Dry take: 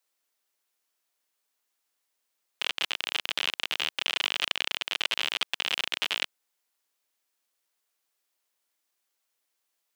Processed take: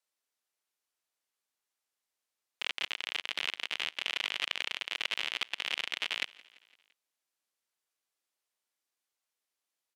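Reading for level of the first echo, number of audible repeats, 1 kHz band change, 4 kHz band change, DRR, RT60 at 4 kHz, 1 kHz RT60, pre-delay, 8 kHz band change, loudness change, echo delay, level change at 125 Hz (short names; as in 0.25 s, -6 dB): -22.5 dB, 3, -6.0 dB, -6.0 dB, none, none, none, none, -7.0 dB, -5.0 dB, 0.17 s, n/a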